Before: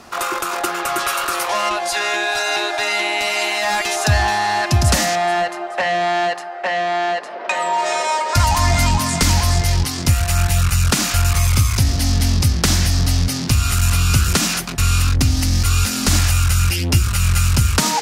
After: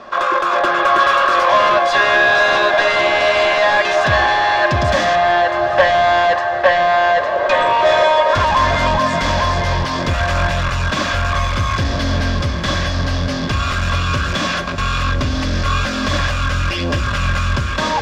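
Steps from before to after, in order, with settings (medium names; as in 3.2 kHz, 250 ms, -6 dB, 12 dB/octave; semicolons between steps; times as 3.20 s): peaking EQ 71 Hz -8.5 dB 2.3 oct; level rider gain up to 6.5 dB; sine folder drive 10 dB, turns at -1 dBFS; distance through air 190 m; small resonant body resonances 580/1100/1600/3400 Hz, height 15 dB, ringing for 50 ms; on a send: echo that smears into a reverb 1055 ms, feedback 46%, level -12 dB; on the sum: trim -11.5 dB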